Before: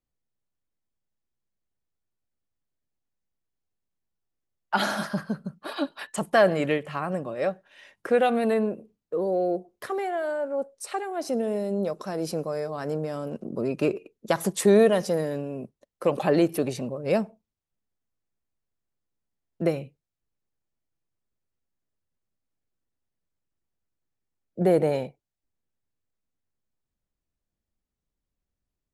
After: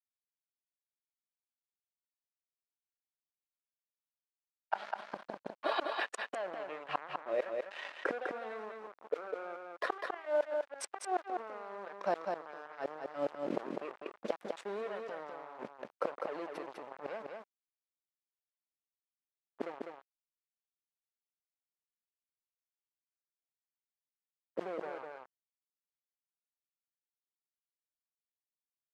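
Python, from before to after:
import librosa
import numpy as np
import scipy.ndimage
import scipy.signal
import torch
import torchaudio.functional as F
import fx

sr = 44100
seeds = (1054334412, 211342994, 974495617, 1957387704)

p1 = fx.spec_quant(x, sr, step_db=15)
p2 = fx.peak_eq(p1, sr, hz=1500.0, db=-10.5, octaves=1.8)
p3 = fx.gate_flip(p2, sr, shuts_db=-26.0, range_db=-29)
p4 = fx.mod_noise(p3, sr, seeds[0], snr_db=22)
p5 = np.sign(p4) * np.maximum(np.abs(p4) - 10.0 ** (-59.0 / 20.0), 0.0)
p6 = fx.bandpass_edges(p5, sr, low_hz=720.0, high_hz=2000.0)
p7 = p6 + fx.echo_single(p6, sr, ms=201, db=-8.5, dry=0)
p8 = fx.env_flatten(p7, sr, amount_pct=50)
y = p8 * 10.0 ** (9.5 / 20.0)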